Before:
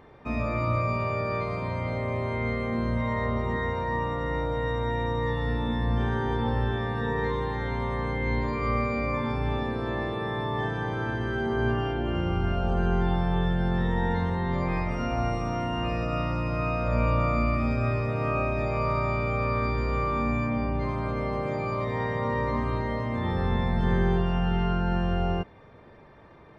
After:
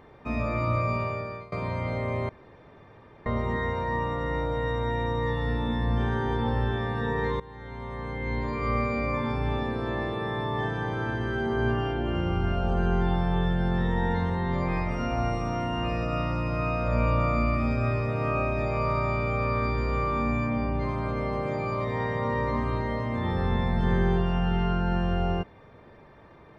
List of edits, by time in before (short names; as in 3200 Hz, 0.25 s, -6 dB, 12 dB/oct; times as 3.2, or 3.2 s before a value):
0.97–1.52 fade out, to -22.5 dB
2.29–3.26 room tone
7.4–8.78 fade in, from -18 dB